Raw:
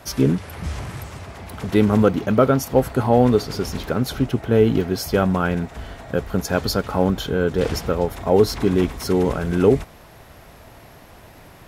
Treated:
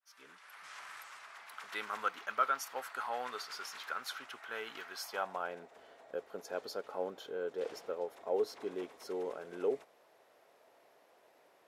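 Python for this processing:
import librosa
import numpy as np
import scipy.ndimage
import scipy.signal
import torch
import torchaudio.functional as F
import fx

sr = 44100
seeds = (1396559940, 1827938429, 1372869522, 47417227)

y = fx.fade_in_head(x, sr, length_s=0.88)
y = np.diff(y, prepend=0.0)
y = fx.filter_sweep_bandpass(y, sr, from_hz=1300.0, to_hz=470.0, start_s=4.89, end_s=5.67, q=1.8)
y = y * 10.0 ** (8.0 / 20.0)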